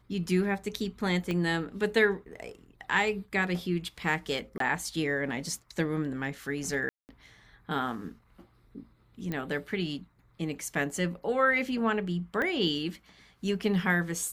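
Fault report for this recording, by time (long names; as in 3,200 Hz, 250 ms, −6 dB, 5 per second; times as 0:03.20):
0:01.31: click −19 dBFS
0:04.58–0:04.60: drop-out 23 ms
0:06.89–0:07.09: drop-out 199 ms
0:09.32: click −20 dBFS
0:12.42: click −19 dBFS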